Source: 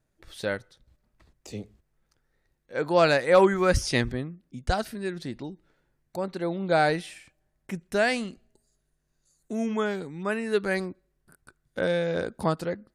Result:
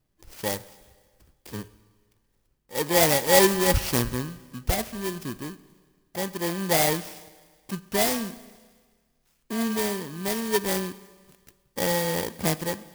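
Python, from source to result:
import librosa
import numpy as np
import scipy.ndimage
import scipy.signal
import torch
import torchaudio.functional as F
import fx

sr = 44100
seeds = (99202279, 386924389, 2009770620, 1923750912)

y = fx.bit_reversed(x, sr, seeds[0], block=32)
y = fx.rev_schroeder(y, sr, rt60_s=1.6, comb_ms=28, drr_db=16.5)
y = fx.clock_jitter(y, sr, seeds[1], jitter_ms=0.029)
y = F.gain(torch.from_numpy(y), 1.5).numpy()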